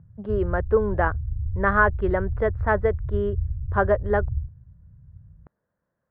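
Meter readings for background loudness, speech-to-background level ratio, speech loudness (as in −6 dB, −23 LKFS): −30.5 LKFS, 6.0 dB, −24.5 LKFS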